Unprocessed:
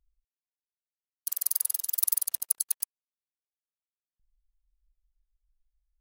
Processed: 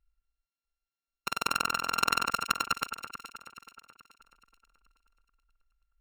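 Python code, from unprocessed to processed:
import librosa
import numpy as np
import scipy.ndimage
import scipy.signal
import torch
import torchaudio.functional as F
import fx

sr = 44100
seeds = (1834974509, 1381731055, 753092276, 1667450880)

y = np.r_[np.sort(x[:len(x) // 32 * 32].reshape(-1, 32), axis=1).ravel(), x[len(x) // 32 * 32:]]
y = fx.high_shelf(y, sr, hz=7700.0, db=-11.0)
y = fx.echo_alternate(y, sr, ms=214, hz=2200.0, feedback_pct=66, wet_db=-8.0)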